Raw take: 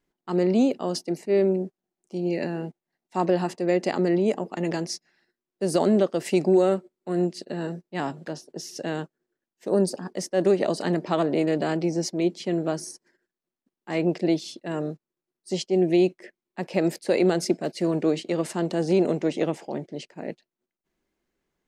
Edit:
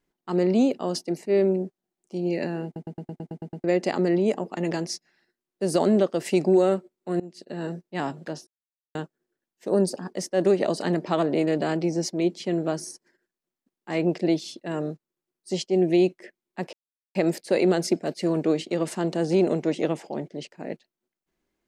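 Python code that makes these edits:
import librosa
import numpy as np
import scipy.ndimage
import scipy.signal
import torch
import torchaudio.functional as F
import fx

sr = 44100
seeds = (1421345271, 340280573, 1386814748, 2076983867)

y = fx.edit(x, sr, fx.stutter_over(start_s=2.65, slice_s=0.11, count=9),
    fx.fade_in_from(start_s=7.2, length_s=0.49, floor_db=-23.0),
    fx.silence(start_s=8.47, length_s=0.48),
    fx.insert_silence(at_s=16.73, length_s=0.42), tone=tone)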